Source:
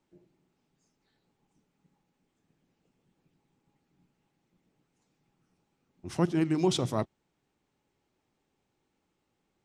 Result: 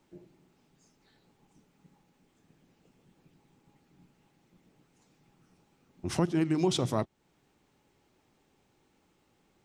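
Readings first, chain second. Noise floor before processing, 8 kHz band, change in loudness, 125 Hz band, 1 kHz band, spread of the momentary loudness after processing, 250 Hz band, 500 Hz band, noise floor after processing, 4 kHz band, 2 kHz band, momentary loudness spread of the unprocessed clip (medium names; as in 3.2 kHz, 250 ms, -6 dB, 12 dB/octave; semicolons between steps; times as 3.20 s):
-79 dBFS, +1.0 dB, -0.5 dB, 0.0 dB, 0.0 dB, 12 LU, -0.5 dB, -0.5 dB, -71 dBFS, 0.0 dB, 0.0 dB, 13 LU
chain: compression 2:1, threshold -40 dBFS, peak gain reduction 11 dB; trim +8.5 dB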